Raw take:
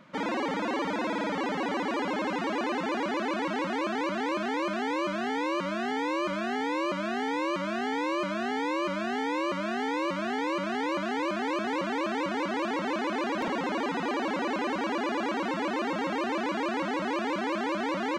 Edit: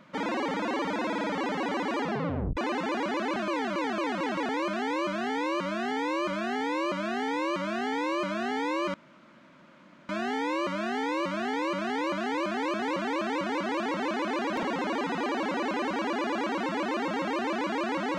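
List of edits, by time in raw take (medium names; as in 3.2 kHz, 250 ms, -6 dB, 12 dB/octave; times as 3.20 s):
2.00 s: tape stop 0.57 s
3.36–4.49 s: reverse
8.94 s: insert room tone 1.15 s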